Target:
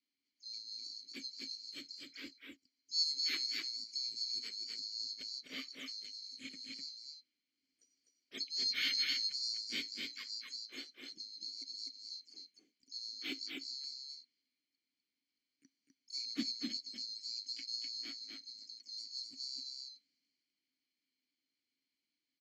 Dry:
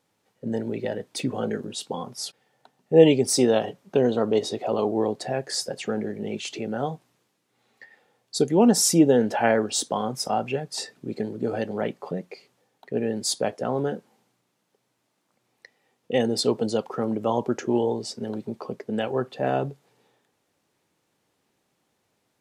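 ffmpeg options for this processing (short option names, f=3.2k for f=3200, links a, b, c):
-filter_complex "[0:a]afftfilt=real='real(if(lt(b,736),b+184*(1-2*mod(floor(b/184),2)),b),0)':imag='imag(if(lt(b,736),b+184*(1-2*mod(floor(b/184),2)),b),0)':win_size=2048:overlap=0.75,asplit=3[a][b][c];[b]asetrate=52444,aresample=44100,atempo=0.840896,volume=-11dB[d];[c]asetrate=66075,aresample=44100,atempo=0.66742,volume=-10dB[e];[a][d][e]amix=inputs=3:normalize=0,asplit=3[f][g][h];[f]bandpass=f=270:t=q:w=8,volume=0dB[i];[g]bandpass=f=2.29k:t=q:w=8,volume=-6dB[j];[h]bandpass=f=3.01k:t=q:w=8,volume=-9dB[k];[i][j][k]amix=inputs=3:normalize=0,asplit=2[l][m];[m]aecho=0:1:252:0.668[n];[l][n]amix=inputs=2:normalize=0,volume=-1dB"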